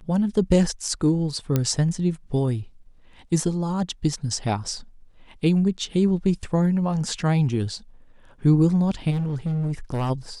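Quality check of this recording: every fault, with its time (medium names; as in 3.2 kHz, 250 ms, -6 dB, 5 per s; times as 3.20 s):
1.56 s: pop -8 dBFS
9.10–10.11 s: clipped -21.5 dBFS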